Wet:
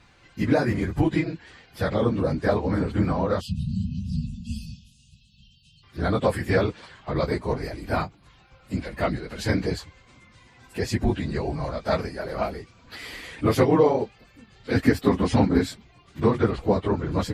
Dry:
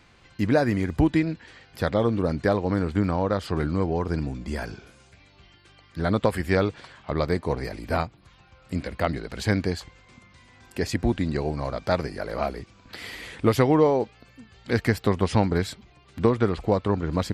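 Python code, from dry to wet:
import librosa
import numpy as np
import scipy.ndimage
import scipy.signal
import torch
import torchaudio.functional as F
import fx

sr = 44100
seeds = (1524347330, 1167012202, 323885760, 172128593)

y = fx.phase_scramble(x, sr, seeds[0], window_ms=50)
y = fx.spec_erase(y, sr, start_s=3.41, length_s=2.42, low_hz=240.0, high_hz=2500.0)
y = fx.peak_eq(y, sr, hz=270.0, db=12.0, octaves=0.27, at=(14.75, 15.69))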